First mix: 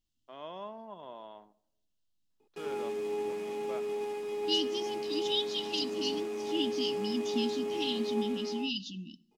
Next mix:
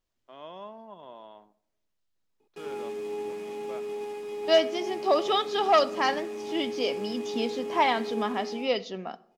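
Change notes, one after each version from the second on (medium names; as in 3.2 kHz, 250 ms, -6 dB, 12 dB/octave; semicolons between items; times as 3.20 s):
second voice: remove brick-wall FIR band-stop 340–2600 Hz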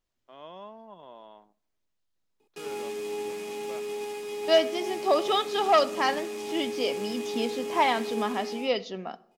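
first voice: send -11.0 dB; background: add treble shelf 2.3 kHz +10.5 dB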